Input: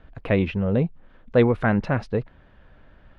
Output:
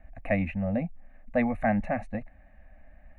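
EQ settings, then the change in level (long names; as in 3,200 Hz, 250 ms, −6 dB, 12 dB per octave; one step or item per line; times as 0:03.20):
phaser with its sweep stopped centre 660 Hz, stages 8
phaser with its sweep stopped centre 1,400 Hz, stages 6
+2.0 dB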